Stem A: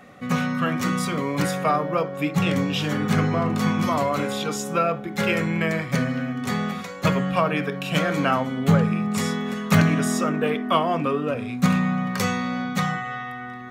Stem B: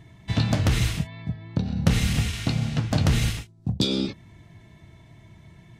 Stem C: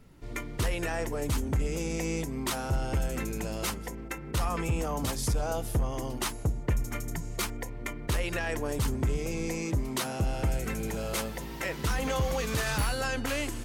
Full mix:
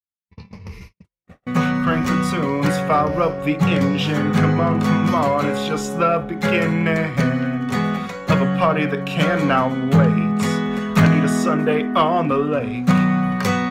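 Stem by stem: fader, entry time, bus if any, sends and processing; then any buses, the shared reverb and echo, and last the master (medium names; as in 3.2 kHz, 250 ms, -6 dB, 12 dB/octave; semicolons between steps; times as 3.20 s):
-2.5 dB, 1.25 s, no send, sine folder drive 4 dB, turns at -4 dBFS
-15.5 dB, 0.00 s, no send, level-controlled noise filter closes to 710 Hz, open at -17 dBFS; rippled EQ curve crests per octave 0.84, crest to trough 15 dB
-18.0 dB, 0.45 s, no send, none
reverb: none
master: gate -36 dBFS, range -51 dB; treble shelf 4.1 kHz -8 dB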